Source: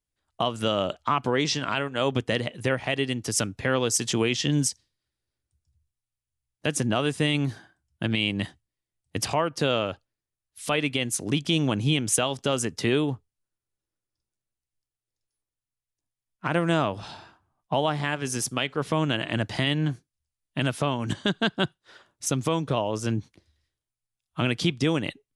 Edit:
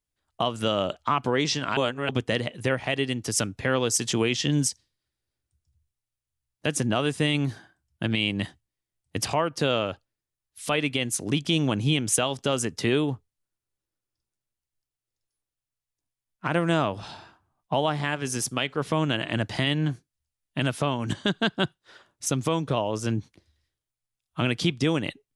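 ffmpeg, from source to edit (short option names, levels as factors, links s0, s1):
-filter_complex "[0:a]asplit=3[s0][s1][s2];[s0]atrim=end=1.772[s3];[s1]atrim=start=1.768:end=2.092,asetpts=PTS-STARTPTS,areverse[s4];[s2]atrim=start=2.088[s5];[s3][s4]acrossfade=d=0.004:c1=hsin:c2=hsin[s6];[s6][s5]acrossfade=d=0.004:c1=hsin:c2=hsin"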